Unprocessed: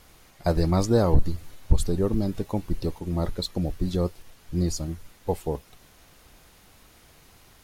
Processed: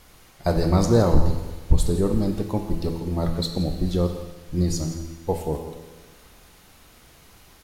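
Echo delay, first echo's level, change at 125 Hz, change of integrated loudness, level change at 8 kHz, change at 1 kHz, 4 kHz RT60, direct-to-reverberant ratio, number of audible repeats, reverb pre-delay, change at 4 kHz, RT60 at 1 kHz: 168 ms, -14.5 dB, +3.0 dB, +3.0 dB, +3.0 dB, +3.0 dB, 1.2 s, 4.0 dB, 1, 12 ms, +3.0 dB, 1.3 s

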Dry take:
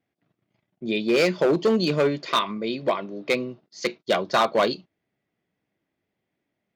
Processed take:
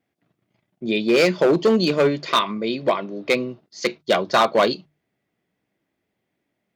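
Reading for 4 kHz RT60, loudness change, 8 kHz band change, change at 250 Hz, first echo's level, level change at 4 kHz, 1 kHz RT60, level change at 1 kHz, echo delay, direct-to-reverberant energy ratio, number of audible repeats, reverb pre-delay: no reverb, +3.5 dB, +3.5 dB, +3.5 dB, no echo, +3.5 dB, no reverb, +3.5 dB, no echo, no reverb, no echo, no reverb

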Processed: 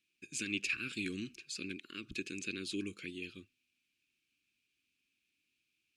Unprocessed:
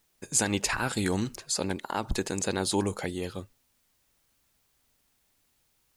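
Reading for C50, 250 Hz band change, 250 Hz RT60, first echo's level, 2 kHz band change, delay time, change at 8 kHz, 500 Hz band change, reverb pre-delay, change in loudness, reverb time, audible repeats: no reverb, -10.5 dB, no reverb, no echo, -5.5 dB, no echo, -16.0 dB, -16.0 dB, no reverb, -10.5 dB, no reverb, no echo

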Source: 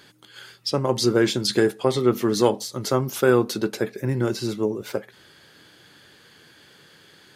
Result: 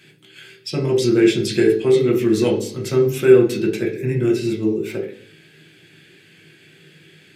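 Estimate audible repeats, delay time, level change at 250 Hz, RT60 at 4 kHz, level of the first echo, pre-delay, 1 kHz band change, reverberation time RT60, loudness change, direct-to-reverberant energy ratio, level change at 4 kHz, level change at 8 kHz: no echo, no echo, +5.5 dB, 0.75 s, no echo, 3 ms, -7.0 dB, 0.60 s, +5.0 dB, -0.5 dB, -1.5 dB, -1.5 dB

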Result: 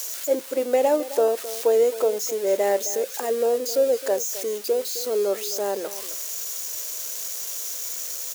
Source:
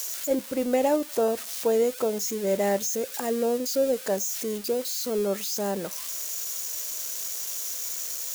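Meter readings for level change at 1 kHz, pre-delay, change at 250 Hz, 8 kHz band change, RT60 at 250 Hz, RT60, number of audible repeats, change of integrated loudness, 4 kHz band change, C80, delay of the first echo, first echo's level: +2.5 dB, no reverb, -5.0 dB, +1.5 dB, no reverb, no reverb, 1, +3.0 dB, +1.5 dB, no reverb, 263 ms, -15.0 dB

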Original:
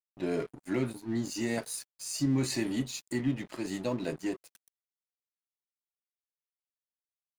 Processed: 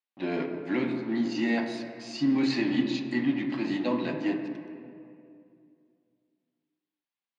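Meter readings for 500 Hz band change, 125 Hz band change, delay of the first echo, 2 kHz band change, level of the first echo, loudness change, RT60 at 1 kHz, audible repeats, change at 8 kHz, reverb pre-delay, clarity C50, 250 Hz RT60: +2.5 dB, -4.0 dB, no echo, +6.5 dB, no echo, +4.5 dB, 2.3 s, no echo, under -10 dB, 4 ms, 5.5 dB, 2.8 s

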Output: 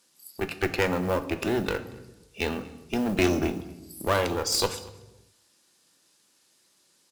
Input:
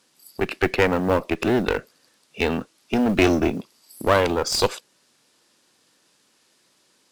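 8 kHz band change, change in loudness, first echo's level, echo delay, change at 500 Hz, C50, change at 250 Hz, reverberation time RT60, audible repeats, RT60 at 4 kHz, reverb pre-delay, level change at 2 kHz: -0.5 dB, -5.5 dB, -23.5 dB, 234 ms, -6.0 dB, 13.0 dB, -6.0 dB, 1.0 s, 1, 0.80 s, 3 ms, -5.5 dB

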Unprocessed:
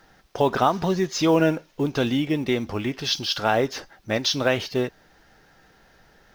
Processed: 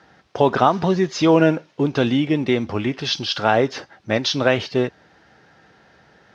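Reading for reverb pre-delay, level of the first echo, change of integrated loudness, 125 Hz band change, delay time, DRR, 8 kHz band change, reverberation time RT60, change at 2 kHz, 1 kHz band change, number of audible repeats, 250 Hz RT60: no reverb, no echo, +4.0 dB, +4.5 dB, no echo, no reverb, -2.0 dB, no reverb, +3.5 dB, +4.0 dB, no echo, no reverb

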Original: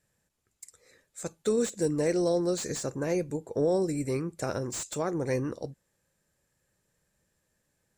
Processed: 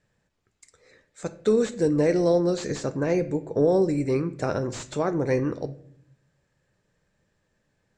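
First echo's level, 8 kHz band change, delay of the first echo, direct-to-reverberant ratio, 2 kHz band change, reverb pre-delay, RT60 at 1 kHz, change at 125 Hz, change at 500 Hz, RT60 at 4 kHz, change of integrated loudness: no echo, -4.5 dB, no echo, 12.0 dB, +4.5 dB, 3 ms, 0.55 s, +5.5 dB, +5.5 dB, 0.45 s, +5.0 dB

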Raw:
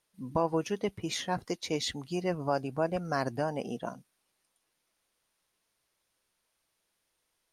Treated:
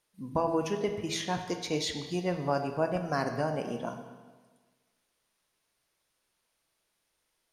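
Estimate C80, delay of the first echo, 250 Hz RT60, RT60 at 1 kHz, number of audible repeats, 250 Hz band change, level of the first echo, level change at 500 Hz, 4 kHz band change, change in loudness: 9.0 dB, no echo, 1.4 s, 1.4 s, no echo, +1.0 dB, no echo, +1.0 dB, +1.0 dB, +1.0 dB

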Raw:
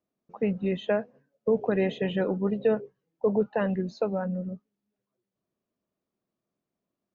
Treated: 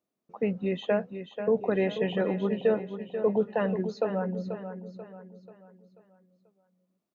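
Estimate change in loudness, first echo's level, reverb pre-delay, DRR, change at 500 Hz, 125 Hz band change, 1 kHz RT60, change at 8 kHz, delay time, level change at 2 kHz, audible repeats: -1.0 dB, -9.5 dB, no reverb, no reverb, 0.0 dB, -1.5 dB, no reverb, no reading, 487 ms, -0.5 dB, 4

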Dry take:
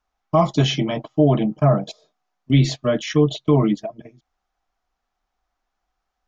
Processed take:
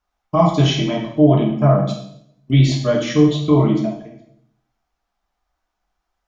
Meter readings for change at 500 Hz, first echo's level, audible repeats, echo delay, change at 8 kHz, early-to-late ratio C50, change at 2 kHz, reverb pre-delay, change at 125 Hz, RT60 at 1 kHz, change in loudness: +2.0 dB, no echo, no echo, no echo, no reading, 5.5 dB, +2.0 dB, 7 ms, +3.5 dB, 0.65 s, +3.0 dB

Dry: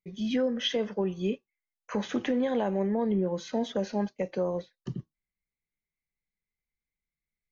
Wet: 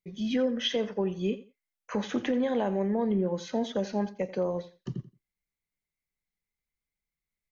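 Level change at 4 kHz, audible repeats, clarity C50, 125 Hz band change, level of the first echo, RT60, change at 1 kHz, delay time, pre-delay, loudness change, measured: 0.0 dB, 2, no reverb, 0.0 dB, -16.5 dB, no reverb, 0.0 dB, 86 ms, no reverb, 0.0 dB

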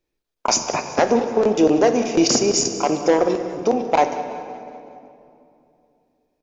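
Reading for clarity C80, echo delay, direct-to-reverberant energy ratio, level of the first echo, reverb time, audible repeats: 8.5 dB, 187 ms, 6.5 dB, -18.5 dB, 2.7 s, 4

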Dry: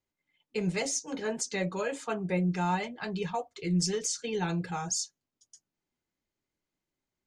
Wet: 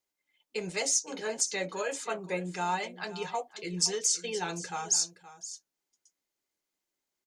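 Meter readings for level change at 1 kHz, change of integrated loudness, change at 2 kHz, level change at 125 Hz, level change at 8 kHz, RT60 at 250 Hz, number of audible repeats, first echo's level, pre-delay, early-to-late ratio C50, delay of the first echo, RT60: 0.0 dB, +1.0 dB, +0.5 dB, -10.5 dB, +5.5 dB, no reverb, 1, -15.5 dB, no reverb, no reverb, 520 ms, no reverb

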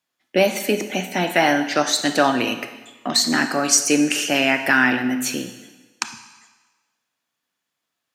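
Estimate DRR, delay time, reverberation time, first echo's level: 9.0 dB, no echo, 1.3 s, no echo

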